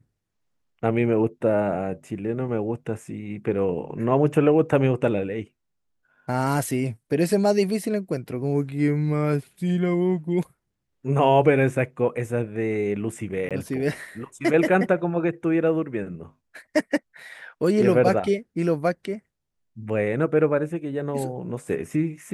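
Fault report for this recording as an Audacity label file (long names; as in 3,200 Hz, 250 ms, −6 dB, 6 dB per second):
13.490000	13.510000	drop-out 17 ms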